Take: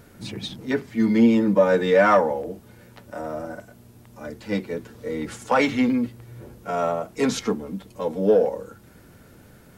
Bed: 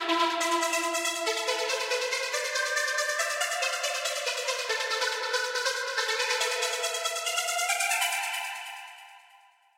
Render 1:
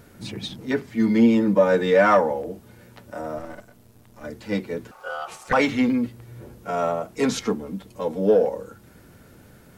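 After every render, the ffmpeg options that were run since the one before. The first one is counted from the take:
-filter_complex "[0:a]asettb=1/sr,asplit=3[a][b][c];[a]atrim=end=3.384[d];[b]atrim=start=3.38:end=4.24,asetpts=PTS-STARTPTS,afade=t=in:d=0.004:c=qsin,afade=t=out:st=0.856:d=0.004:c=qsin,aeval=exprs='if(lt(val(0),0),0.251*val(0),val(0))':c=same[e];[c]atrim=start=4.236[f];[d][e]acrossfade=d=0.004:c1=hsin:c2=qsin[g];[g][f]acrossfade=d=0.004:c1=qsin:c2=hsin,asettb=1/sr,asplit=3[h][i][j];[h]atrim=end=4.914[k];[i]atrim=start=4.91:end=5.53,asetpts=PTS-STARTPTS,afade=t=in:d=0.004:c=qsin,afade=t=out:st=0.616:d=0.004:c=qsin,aeval=exprs='val(0)*sin(2*PI*1000*n/s)':c=same[l];[j]atrim=start=5.526[m];[k][l]acrossfade=d=0.004:c1=hsin:c2=qsin[n];[n][m]acrossfade=d=0.004:c1=qsin:c2=hsin"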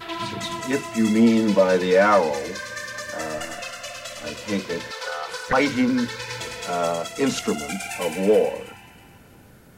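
-filter_complex "[1:a]volume=-5dB[a];[0:a][a]amix=inputs=2:normalize=0"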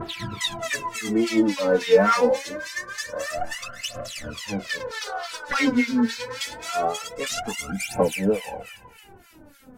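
-filter_complex "[0:a]acrossover=split=1300[a][b];[a]aeval=exprs='val(0)*(1-1/2+1/2*cos(2*PI*3.5*n/s))':c=same[c];[b]aeval=exprs='val(0)*(1-1/2-1/2*cos(2*PI*3.5*n/s))':c=same[d];[c][d]amix=inputs=2:normalize=0,aphaser=in_gain=1:out_gain=1:delay=4.6:decay=0.8:speed=0.25:type=triangular"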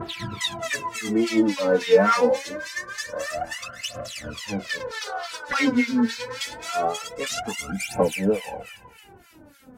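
-af "highpass=40,highshelf=f=11k:g=-3"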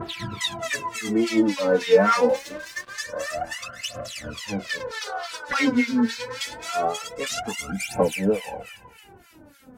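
-filter_complex "[0:a]asettb=1/sr,asplit=3[a][b][c];[a]atrim=end=2.294[d];[b]atrim=start=2.29:end=2.93,asetpts=PTS-STARTPTS,afade=t=in:d=0.004:c=qsin,afade=t=out:st=0.636:d=0.004:c=qsin,aeval=exprs='sgn(val(0))*max(abs(val(0))-0.00891,0)':c=same[e];[c]atrim=start=2.926[f];[d][e]acrossfade=d=0.004:c1=hsin:c2=qsin[g];[g][f]acrossfade=d=0.004:c1=qsin:c2=hsin"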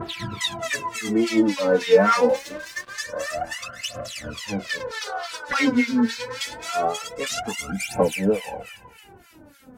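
-af "volume=1dB"

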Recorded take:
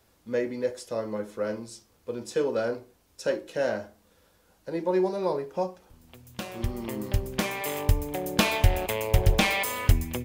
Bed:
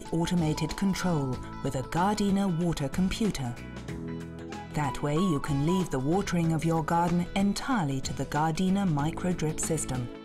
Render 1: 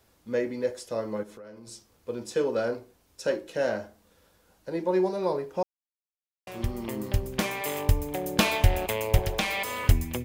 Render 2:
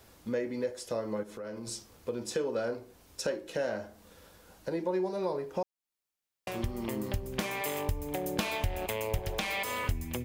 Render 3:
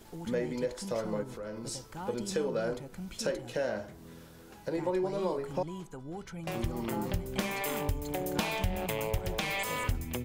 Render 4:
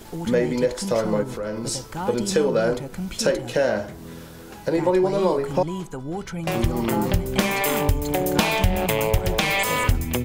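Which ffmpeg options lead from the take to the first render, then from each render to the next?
-filter_complex "[0:a]asettb=1/sr,asplit=3[a][b][c];[a]atrim=end=1.234[d];[b]atrim=start=1.23:end=1.67,asetpts=PTS-STARTPTS,afade=t=in:d=0.004:c=qsin,afade=t=out:st=0.436:d=0.004:c=qsin,acompressor=threshold=-43dB:ratio=6:attack=3.2:release=140:knee=1:detection=peak[e];[c]atrim=start=1.666[f];[d][e]acrossfade=d=0.004:c1=hsin:c2=qsin[g];[g][f]acrossfade=d=0.004:c1=qsin:c2=hsin,asettb=1/sr,asplit=3[h][i][j];[h]atrim=end=9.184[k];[i]atrim=start=9.18:end=9.84,asetpts=PTS-STARTPTS,afade=t=in:d=0.004:c=qsin,afade=t=out:st=0.656:d=0.004:c=qsin,acrossover=split=210|520|5900[l][m][n][o];[l]acompressor=threshold=-32dB:ratio=3[p];[m]acompressor=threshold=-39dB:ratio=3[q];[n]acompressor=threshold=-27dB:ratio=3[r];[o]acompressor=threshold=-40dB:ratio=3[s];[p][q][r][s]amix=inputs=4:normalize=0[t];[j]atrim=start=9.836[u];[k][t]acrossfade=d=0.004:c1=hsin:c2=qsin[v];[v][u]acrossfade=d=0.004:c1=qsin:c2=hsin,asplit=3[w][x][y];[w]atrim=end=5.63,asetpts=PTS-STARTPTS,afade=t=out:st=5.626:d=0.004:c=hsin[z];[x]atrim=start=5.63:end=6.47,asetpts=PTS-STARTPTS,volume=0[aa];[y]atrim=start=6.47,asetpts=PTS-STARTPTS,afade=t=in:d=0.004:c=hsin[ab];[z][aa][ab]concat=n=3:v=0:a=1"
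-filter_complex "[0:a]asplit=2[a][b];[b]alimiter=limit=-15.5dB:level=0:latency=1:release=177,volume=1dB[c];[a][c]amix=inputs=2:normalize=0,acompressor=threshold=-35dB:ratio=2.5"
-filter_complex "[1:a]volume=-15dB[a];[0:a][a]amix=inputs=2:normalize=0"
-af "volume=11.5dB"

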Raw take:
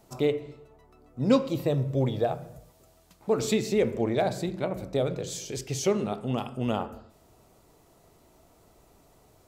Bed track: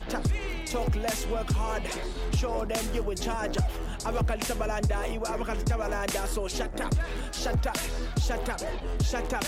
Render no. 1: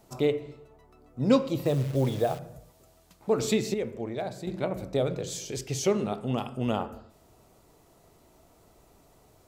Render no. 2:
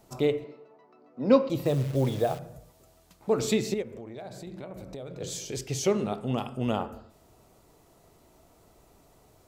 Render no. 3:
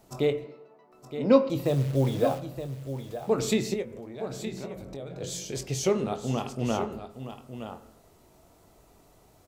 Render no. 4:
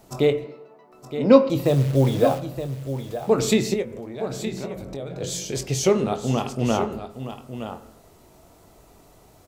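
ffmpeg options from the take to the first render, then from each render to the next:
-filter_complex "[0:a]asettb=1/sr,asplit=3[a][b][c];[a]atrim=end=1.654[d];[b]atrim=start=1.65:end=2.39,asetpts=PTS-STARTPTS,afade=t=in:d=0.004:c=qsin,afade=t=out:st=0.736:d=0.004:c=qsin,acrusher=bits=8:dc=4:mix=0:aa=0.000001[e];[c]atrim=start=2.386[f];[d][e]acrossfade=d=0.004:c1=hsin:c2=qsin[g];[g][f]acrossfade=d=0.004:c1=qsin:c2=hsin,asplit=3[h][i][j];[h]atrim=end=3.742[k];[i]atrim=start=3.738:end=4.472,asetpts=PTS-STARTPTS,volume=-7.5dB[l];[j]atrim=start=4.468[m];[k][l]acrossfade=d=0.004:c1=hsin:c2=hsin[n];[n][m]acrossfade=d=0.004:c1=hsin:c2=hsin"
-filter_complex "[0:a]asettb=1/sr,asplit=3[a][b][c];[a]atrim=end=0.444[d];[b]atrim=start=0.44:end=1.5,asetpts=PTS-STARTPTS,afade=t=in:d=0.004:c=qsin,afade=t=out:st=1.056:d=0.004:c=qsin,highpass=f=190:w=0.5412,highpass=f=190:w=1.3066,equalizer=f=560:t=q:w=4:g=4,equalizer=f=980:t=q:w=4:g=3,equalizer=f=3.4k:t=q:w=4:g=-8,lowpass=f=4.8k:w=0.5412,lowpass=f=4.8k:w=1.3066[e];[c]atrim=start=1.496[f];[d][e]acrossfade=d=0.004:c1=hsin:c2=qsin[g];[g][f]acrossfade=d=0.004:c1=qsin:c2=hsin,asplit=3[h][i][j];[h]afade=t=out:st=3.81:d=0.02[k];[i]acompressor=threshold=-37dB:ratio=6:attack=3.2:release=140:knee=1:detection=peak,afade=t=in:st=3.81:d=0.02,afade=t=out:st=5.2:d=0.02[l];[j]afade=t=in:st=5.2:d=0.02[m];[k][l][m]amix=inputs=3:normalize=0"
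-filter_complex "[0:a]asplit=2[a][b];[b]adelay=22,volume=-10.5dB[c];[a][c]amix=inputs=2:normalize=0,asplit=2[d][e];[e]aecho=0:1:918:0.299[f];[d][f]amix=inputs=2:normalize=0"
-af "volume=6dB"

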